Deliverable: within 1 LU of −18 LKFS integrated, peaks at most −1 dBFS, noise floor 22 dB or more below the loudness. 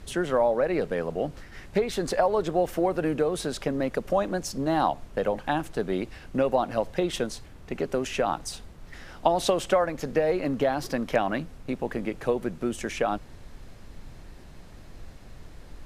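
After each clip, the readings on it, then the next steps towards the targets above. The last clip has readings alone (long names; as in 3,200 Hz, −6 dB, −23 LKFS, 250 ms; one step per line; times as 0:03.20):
background noise floor −46 dBFS; target noise floor −50 dBFS; integrated loudness −27.5 LKFS; sample peak −6.5 dBFS; target loudness −18.0 LKFS
→ noise reduction from a noise print 6 dB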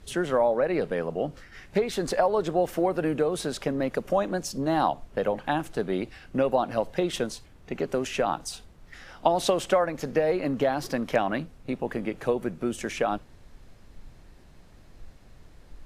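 background noise floor −52 dBFS; integrated loudness −27.5 LKFS; sample peak −6.5 dBFS; target loudness −18.0 LKFS
→ level +9.5 dB
brickwall limiter −1 dBFS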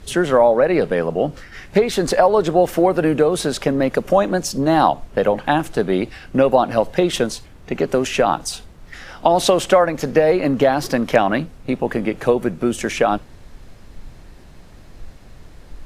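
integrated loudness −18.0 LKFS; sample peak −1.0 dBFS; background noise floor −42 dBFS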